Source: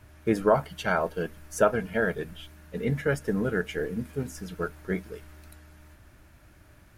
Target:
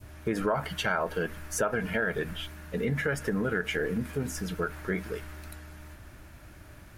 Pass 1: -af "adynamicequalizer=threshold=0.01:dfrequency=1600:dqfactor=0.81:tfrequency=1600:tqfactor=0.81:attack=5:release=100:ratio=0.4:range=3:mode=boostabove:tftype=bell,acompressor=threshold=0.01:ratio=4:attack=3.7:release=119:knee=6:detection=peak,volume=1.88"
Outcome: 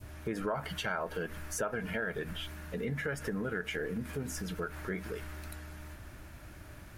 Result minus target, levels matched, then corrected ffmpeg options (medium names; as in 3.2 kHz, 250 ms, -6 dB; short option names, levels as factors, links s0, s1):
compression: peak gain reduction +6.5 dB
-af "adynamicequalizer=threshold=0.01:dfrequency=1600:dqfactor=0.81:tfrequency=1600:tqfactor=0.81:attack=5:release=100:ratio=0.4:range=3:mode=boostabove:tftype=bell,acompressor=threshold=0.0266:ratio=4:attack=3.7:release=119:knee=6:detection=peak,volume=1.88"